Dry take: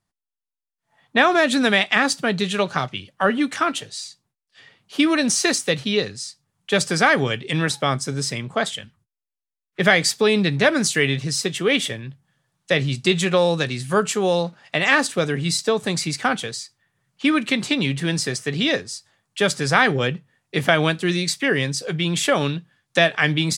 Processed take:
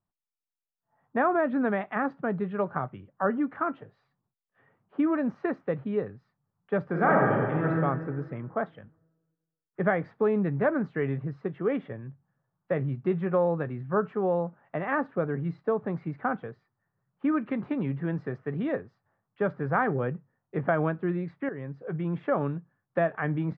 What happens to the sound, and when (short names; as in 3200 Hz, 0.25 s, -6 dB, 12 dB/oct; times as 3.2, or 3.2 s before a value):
6.86–7.7 reverb throw, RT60 1.7 s, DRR -2.5 dB
17.37–18.95 high shelf 4100 Hz +6.5 dB
21.49–21.93 fade in, from -12.5 dB
whole clip: LPF 1400 Hz 24 dB/oct; gain -6.5 dB